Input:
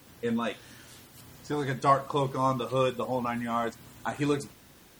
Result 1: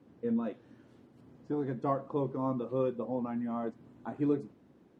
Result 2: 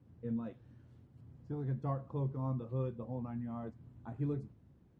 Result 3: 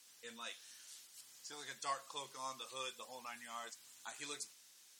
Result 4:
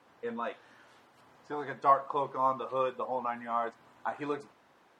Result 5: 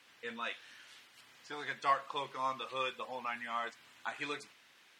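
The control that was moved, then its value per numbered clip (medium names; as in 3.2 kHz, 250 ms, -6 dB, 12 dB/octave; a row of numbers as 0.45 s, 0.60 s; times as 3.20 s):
band-pass filter, frequency: 280 Hz, 100 Hz, 6.8 kHz, 910 Hz, 2.4 kHz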